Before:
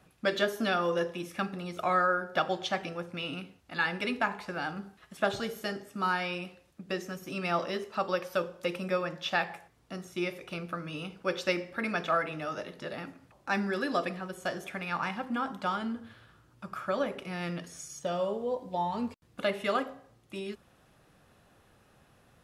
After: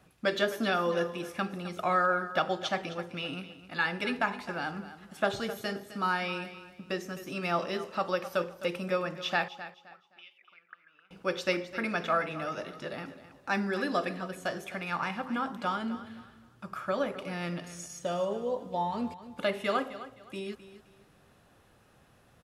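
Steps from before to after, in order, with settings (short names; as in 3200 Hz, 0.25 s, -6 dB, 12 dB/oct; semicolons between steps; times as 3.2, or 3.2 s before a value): 9.48–11.11 auto-wah 430–3100 Hz, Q 14, up, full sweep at -31 dBFS; on a send: feedback echo 0.26 s, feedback 28%, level -14 dB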